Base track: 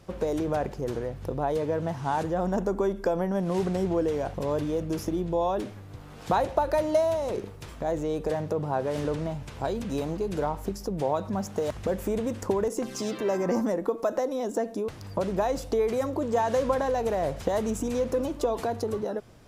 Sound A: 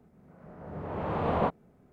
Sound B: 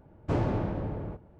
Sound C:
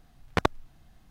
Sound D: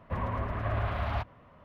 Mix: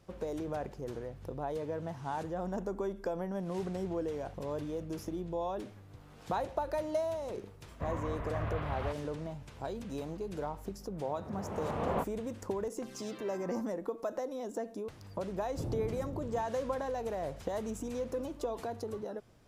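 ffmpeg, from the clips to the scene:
-filter_complex "[0:a]volume=-9.5dB[a];[2:a]tiltshelf=f=650:g=8.5[b];[4:a]atrim=end=1.64,asetpts=PTS-STARTPTS,volume=-6dB,afade=t=in:d=0.004:c=hsin,afade=t=out:st=1.636:d=0.004:c=hsin,adelay=339570S[c];[1:a]atrim=end=1.92,asetpts=PTS-STARTPTS,volume=-6dB,afade=t=in:d=0.004:c=hsin,afade=t=out:st=1.916:d=0.004:c=hsin,adelay=10540[d];[b]atrim=end=1.39,asetpts=PTS-STARTPTS,volume=-16.5dB,afade=t=in:d=0.004:c=hsin,afade=t=out:st=1.386:d=0.004:c=hsin,adelay=15290[e];[a][c][d][e]amix=inputs=4:normalize=0"

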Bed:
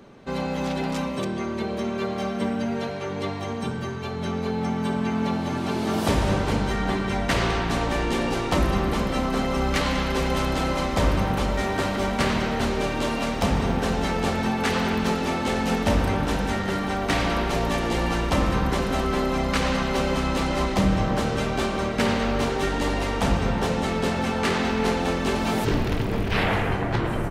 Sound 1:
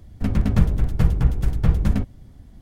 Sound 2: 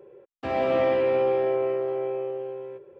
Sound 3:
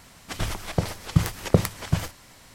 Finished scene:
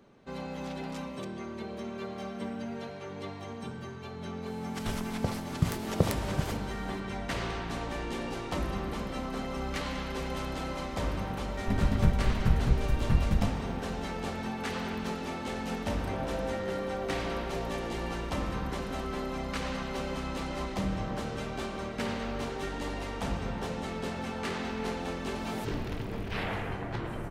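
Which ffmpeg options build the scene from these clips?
-filter_complex "[0:a]volume=-11dB[a];[2:a]lowpass=1.4k[b];[3:a]atrim=end=2.54,asetpts=PTS-STARTPTS,volume=-7.5dB,afade=t=in:d=0.004:c=hsin,afade=t=out:st=2.536:d=0.004:c=hsin,adelay=4460[c];[1:a]atrim=end=2.61,asetpts=PTS-STARTPTS,volume=-7.5dB,afade=t=in:d=0.004:c=hsin,afade=t=out:st=2.606:d=0.004:c=hsin,adelay=505386S[d];[b]atrim=end=2.99,asetpts=PTS-STARTPTS,volume=-13.5dB,afade=t=in:d=0.004:c=hsin,afade=t=out:st=2.986:d=0.004:c=hsin,adelay=15630[e];[a][c][d][e]amix=inputs=4:normalize=0"

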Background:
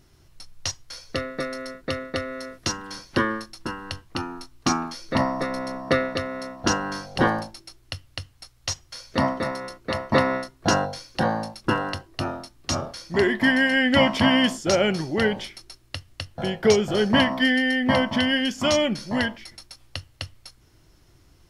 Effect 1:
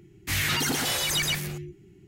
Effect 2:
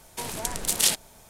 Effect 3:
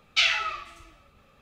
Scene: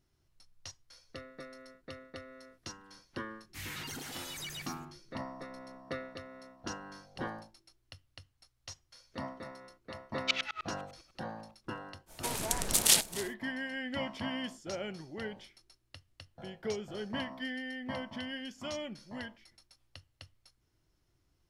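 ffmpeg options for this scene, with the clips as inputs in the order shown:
-filter_complex "[0:a]volume=-18.5dB[a];[3:a]aeval=exprs='val(0)*pow(10,-35*if(lt(mod(-10*n/s,1),2*abs(-10)/1000),1-mod(-10*n/s,1)/(2*abs(-10)/1000),(mod(-10*n/s,1)-2*abs(-10)/1000)/(1-2*abs(-10)/1000))/20)':c=same[b];[2:a]aecho=1:1:267:0.119[c];[1:a]atrim=end=2.07,asetpts=PTS-STARTPTS,volume=-16.5dB,afade=t=in:d=0.004:c=hsin,afade=t=out:st=2.066:d=0.004:c=hsin,adelay=3270[d];[b]atrim=end=1.41,asetpts=PTS-STARTPTS,volume=-3dB,afade=t=in:d=0.004:c=hsin,afade=t=out:st=1.406:d=0.004:c=hsin,adelay=10110[e];[c]atrim=end=1.29,asetpts=PTS-STARTPTS,volume=-2dB,afade=t=in:d=0.05,afade=t=out:st=1.24:d=0.05,adelay=12060[f];[a][d][e][f]amix=inputs=4:normalize=0"

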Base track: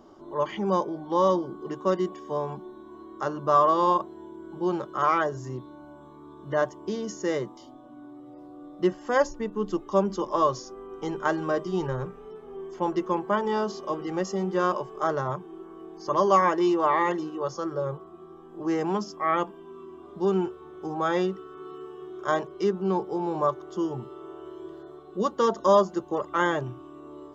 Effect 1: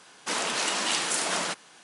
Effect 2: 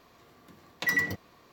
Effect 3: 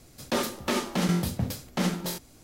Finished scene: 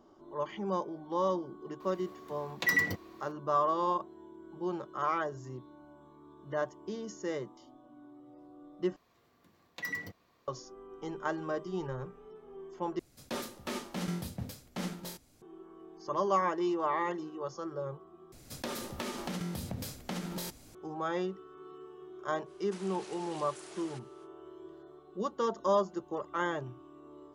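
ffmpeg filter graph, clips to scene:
-filter_complex "[2:a]asplit=2[a][b];[3:a]asplit=2[c][d];[0:a]volume=-8.5dB[e];[d]acompressor=threshold=-33dB:ratio=6:attack=3.2:release=140:knee=1:detection=peak[f];[1:a]acompressor=threshold=-41dB:ratio=3:attack=64:release=84:knee=1:detection=peak[g];[e]asplit=4[h][i][j][k];[h]atrim=end=8.964[l];[b]atrim=end=1.52,asetpts=PTS-STARTPTS,volume=-11dB[m];[i]atrim=start=10.476:end=12.994[n];[c]atrim=end=2.43,asetpts=PTS-STARTPTS,volume=-10.5dB[o];[j]atrim=start=15.416:end=18.324[p];[f]atrim=end=2.43,asetpts=PTS-STARTPTS,volume=-1dB[q];[k]atrim=start=20.746[r];[a]atrim=end=1.52,asetpts=PTS-STARTPTS,volume=-1dB,afade=t=in:d=0.004:c=hsin,afade=t=out:st=1.516:d=0.004:c=hsin,adelay=1800[s];[g]atrim=end=1.83,asetpts=PTS-STARTPTS,volume=-16dB,afade=t=in:d=0.05,afade=t=out:st=1.78:d=0.05,adelay=22450[t];[l][m]acrossfade=d=0.004:c1=hsin:c2=hsin[u];[u][n]acrossfade=d=0.004:c1=hsin:c2=hsin[v];[v][o]acrossfade=d=0.004:c1=hsin:c2=hsin[w];[w][p]acrossfade=d=0.004:c1=hsin:c2=hsin[x];[x][q]acrossfade=d=0.004:c1=hsin:c2=hsin[y];[y][r]acrossfade=d=0.004:c1=hsin:c2=hsin[z];[z][s][t]amix=inputs=3:normalize=0"

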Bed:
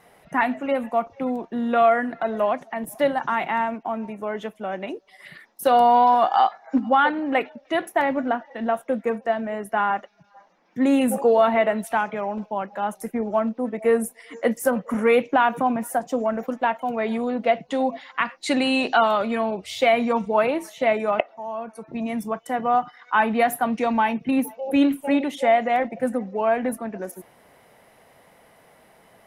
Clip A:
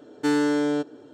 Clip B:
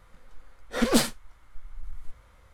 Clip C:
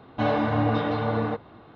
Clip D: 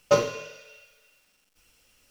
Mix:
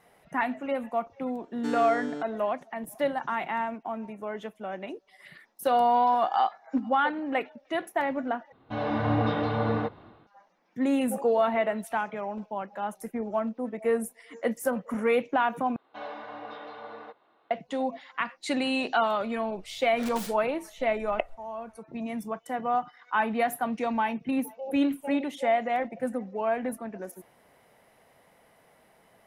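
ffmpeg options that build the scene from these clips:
-filter_complex "[3:a]asplit=2[a][b];[0:a]volume=-6.5dB[c];[a]dynaudnorm=f=140:g=5:m=11.5dB[d];[b]highpass=520[e];[2:a]aeval=exprs='(mod(10*val(0)+1,2)-1)/10':c=same[f];[c]asplit=3[g][h][i];[g]atrim=end=8.524[j];[d]atrim=end=1.75,asetpts=PTS-STARTPTS,volume=-11.5dB[k];[h]atrim=start=10.266:end=15.764[l];[e]atrim=end=1.75,asetpts=PTS-STARTPTS,volume=-12.5dB[m];[i]atrim=start=17.506[n];[1:a]atrim=end=1.13,asetpts=PTS-STARTPTS,volume=-11.5dB,afade=t=in:d=0.004:c=hsin,afade=t=out:st=1.126:d=0.004:c=hsin,adelay=1400[o];[f]atrim=end=2.53,asetpts=PTS-STARTPTS,volume=-12dB,afade=t=in:d=0.004:c=hsin,afade=t=out:st=2.526:d=0.004:c=hsin,adelay=848484S[p];[j][k]acrossfade=d=0.004:c1=hsin:c2=hsin[q];[q][l]acrossfade=d=0.004:c1=hsin:c2=hsin[r];[r][m]acrossfade=d=0.004:c1=hsin:c2=hsin[s];[s][n]acrossfade=d=0.004:c1=hsin:c2=hsin[t];[t][o][p]amix=inputs=3:normalize=0"

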